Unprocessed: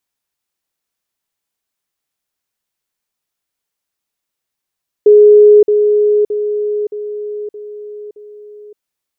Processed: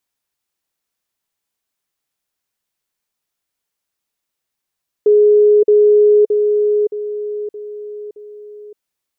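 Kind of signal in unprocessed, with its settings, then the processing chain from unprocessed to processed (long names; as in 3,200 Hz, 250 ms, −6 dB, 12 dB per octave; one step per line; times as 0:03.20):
level staircase 418 Hz −2 dBFS, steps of −6 dB, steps 6, 0.57 s 0.05 s
dynamic equaliser 460 Hz, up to +7 dB, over −20 dBFS, Q 2.3
brickwall limiter −6.5 dBFS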